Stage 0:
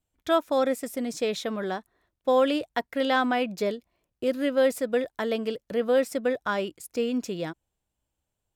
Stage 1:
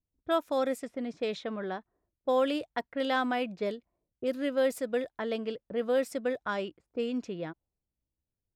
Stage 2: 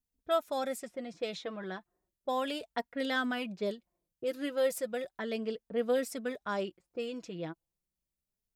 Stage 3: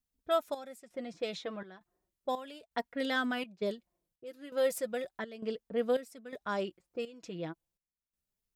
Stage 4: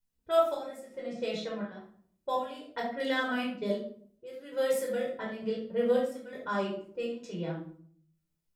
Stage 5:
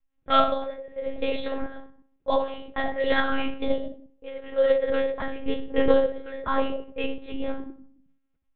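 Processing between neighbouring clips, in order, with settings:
low-pass opened by the level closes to 410 Hz, open at -21.5 dBFS; gain -5 dB
high shelf 4600 Hz +8.5 dB; flange 0.34 Hz, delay 4.1 ms, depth 2.2 ms, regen +20%
step gate "xxx..xxxx." 83 bpm -12 dB
shoebox room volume 720 m³, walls furnished, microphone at 4.8 m; gain -4.5 dB
monotone LPC vocoder at 8 kHz 270 Hz; low-pass opened by the level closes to 2400 Hz; gain +8 dB

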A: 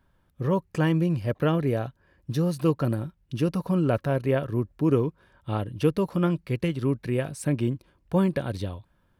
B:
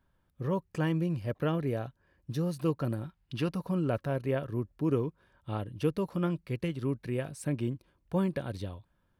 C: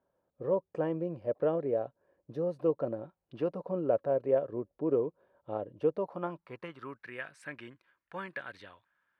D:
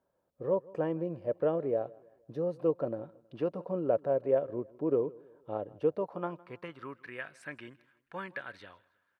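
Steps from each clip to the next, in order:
spectral gain 3.04–3.52, 670–5200 Hz +7 dB; gain -6.5 dB
band-pass sweep 550 Hz -> 1700 Hz, 5.79–7.16; gain +7 dB
feedback echo 0.16 s, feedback 41%, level -23 dB

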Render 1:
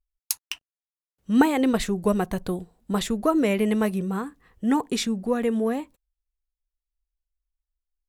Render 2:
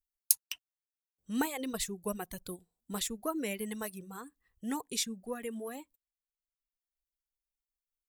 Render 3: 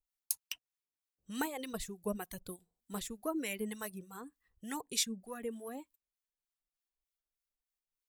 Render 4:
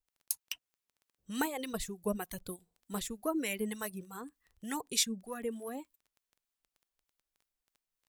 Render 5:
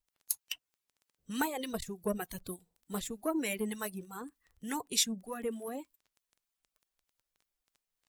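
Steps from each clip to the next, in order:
reverb removal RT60 1.4 s; pre-emphasis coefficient 0.8
harmonic tremolo 3.3 Hz, depth 70%, crossover 940 Hz; gain +1 dB
AGC gain up to 3 dB; crackle 10/s -50 dBFS
bin magnitudes rounded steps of 15 dB; core saturation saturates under 1000 Hz; gain +1.5 dB

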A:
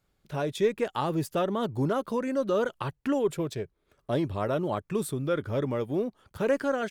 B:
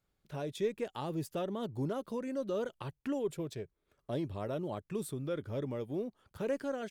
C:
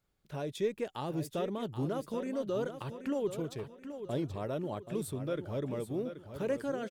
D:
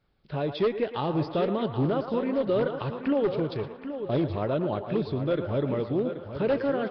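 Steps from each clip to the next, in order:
dynamic EQ 1300 Hz, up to -6 dB, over -42 dBFS, Q 1; gain -7.5 dB
feedback echo 0.779 s, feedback 38%, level -10 dB; gain +1 dB
narrowing echo 0.114 s, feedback 64%, band-pass 1100 Hz, level -8 dB; wavefolder -26 dBFS; gain +8.5 dB; Nellymoser 22 kbps 11025 Hz

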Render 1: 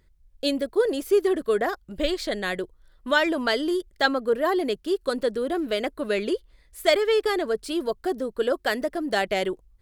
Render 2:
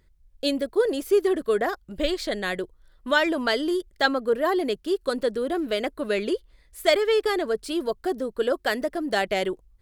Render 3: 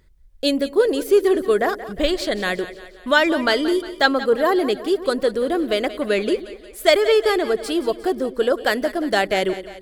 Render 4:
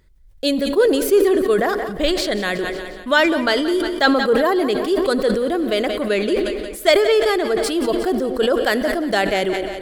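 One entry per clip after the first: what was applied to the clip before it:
nothing audible
split-band echo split 440 Hz, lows 0.106 s, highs 0.178 s, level -14 dB; gain +5 dB
on a send at -19 dB: reverb RT60 2.1 s, pre-delay 56 ms; on the sum: sustainer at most 38 dB/s

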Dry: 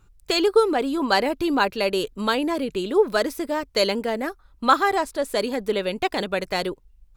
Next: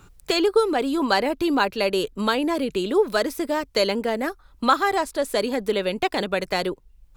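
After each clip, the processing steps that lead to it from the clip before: three-band squash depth 40%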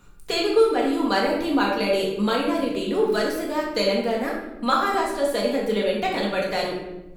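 shoebox room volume 360 m³, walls mixed, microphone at 1.8 m; gain -5.5 dB

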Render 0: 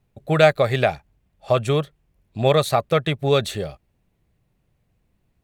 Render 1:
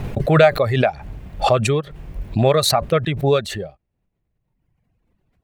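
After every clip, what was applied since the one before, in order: reverb removal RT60 1.3 s; high shelf 4000 Hz -11.5 dB; backwards sustainer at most 42 dB/s; gain +2 dB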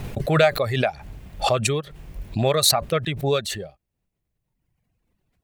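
high shelf 3100 Hz +10 dB; gain -5.5 dB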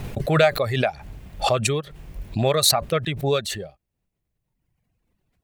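nothing audible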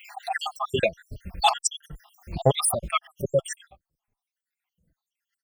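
random spectral dropouts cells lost 76%; endless flanger 4.2 ms -2 Hz; gain +7.5 dB

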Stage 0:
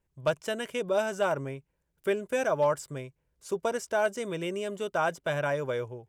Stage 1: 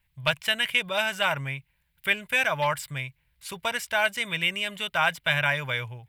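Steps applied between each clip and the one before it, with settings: EQ curve 130 Hz 0 dB, 390 Hz -19 dB, 880 Hz -2 dB, 1300 Hz -2 dB, 2100 Hz +11 dB, 4000 Hz +8 dB, 6200 Hz -6 dB, 13000 Hz +7 dB; gain +6 dB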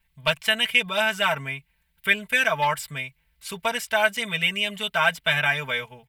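comb 4.5 ms, depth 92%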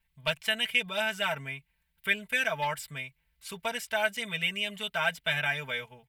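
dynamic EQ 1100 Hz, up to -6 dB, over -41 dBFS, Q 3.5; gain -6.5 dB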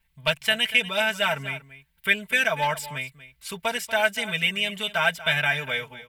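echo 0.238 s -15.5 dB; gain +6 dB

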